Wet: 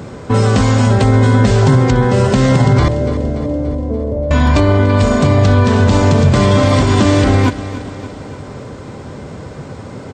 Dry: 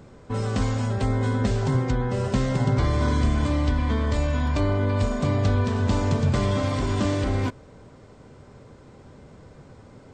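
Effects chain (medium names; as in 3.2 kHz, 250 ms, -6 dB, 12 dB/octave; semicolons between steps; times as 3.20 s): high-pass 65 Hz 12 dB/octave; in parallel at -2 dB: compression, threshold -33 dBFS, peak gain reduction 14.5 dB; 2.88–4.31 s: on the sum: four-pole ladder low-pass 600 Hz, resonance 60%; on a send: feedback delay 289 ms, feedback 57%, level -15 dB; on the sum: loudness maximiser +14 dB; trim -1 dB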